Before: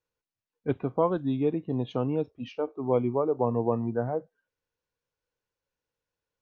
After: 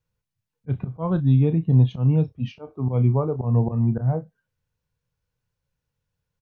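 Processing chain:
volume swells 133 ms
low shelf with overshoot 220 Hz +12.5 dB, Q 1.5
double-tracking delay 31 ms −11.5 dB
level +2 dB

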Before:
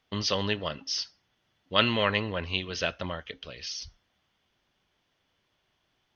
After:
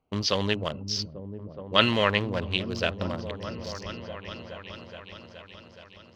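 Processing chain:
adaptive Wiener filter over 25 samples
echo whose low-pass opens from repeat to repeat 421 ms, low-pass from 200 Hz, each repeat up 1 octave, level −6 dB
level +3 dB

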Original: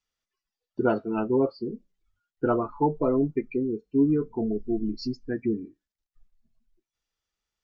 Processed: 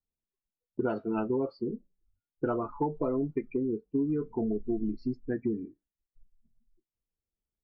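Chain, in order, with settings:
low-pass that shuts in the quiet parts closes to 380 Hz, open at −18.5 dBFS
downward compressor, threshold −26 dBFS, peak gain reduction 9 dB

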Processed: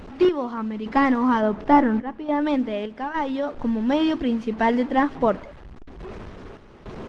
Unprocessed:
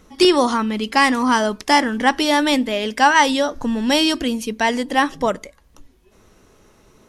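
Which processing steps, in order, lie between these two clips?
linear delta modulator 64 kbit/s, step −28.5 dBFS
0:01.40–0:02.40: high-shelf EQ 3,100 Hz → 2,100 Hz −10 dB
0:02.91–0:03.58: downward compressor 1.5 to 1, threshold −20 dBFS, peak gain reduction 4 dB
sample-and-hold tremolo, depth 80%
head-to-tape spacing loss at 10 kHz 34 dB
slap from a distant wall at 32 metres, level −26 dB
level +3 dB
Opus 20 kbit/s 48,000 Hz

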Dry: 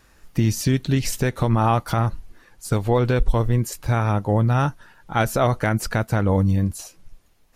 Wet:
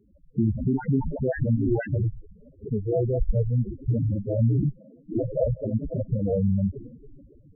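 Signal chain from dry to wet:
low-shelf EQ 130 Hz −11.5 dB
in parallel at −1.5 dB: brickwall limiter −16.5 dBFS, peak gain reduction 9.5 dB
on the sum: tube saturation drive 17 dB, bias 0.8
on a send: delay with a high-pass on its return 140 ms, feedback 79%, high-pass 5,000 Hz, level −8 dB
on the sum: decimation without filtering 38×
0:00.73–0:01.87: all-pass dispersion highs, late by 149 ms, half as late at 1,300 Hz
0:02.70–0:04.17: high-frequency loss of the air 490 metres
spectral peaks only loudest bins 4
level +5 dB

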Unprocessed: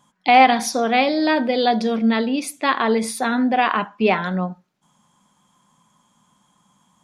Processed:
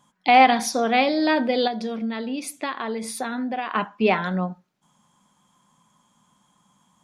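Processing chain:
0:01.67–0:03.75: downward compressor, threshold −23 dBFS, peak gain reduction 10 dB
level −2 dB

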